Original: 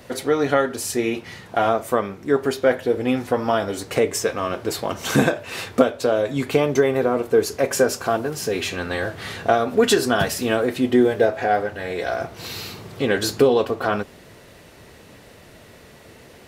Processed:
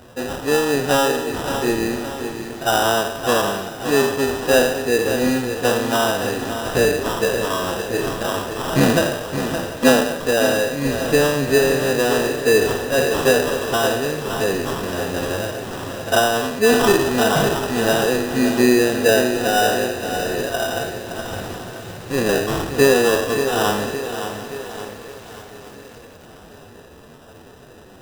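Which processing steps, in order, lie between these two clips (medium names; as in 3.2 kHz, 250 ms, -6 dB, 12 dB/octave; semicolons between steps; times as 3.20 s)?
spectral sustain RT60 0.51 s; time stretch by phase-locked vocoder 1.7×; sample-rate reducer 2.2 kHz, jitter 0%; on a send: shuffle delay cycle 989 ms, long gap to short 3:1, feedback 53%, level -18.5 dB; on the sum: bit-crushed delay 568 ms, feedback 55%, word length 6-bit, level -8.5 dB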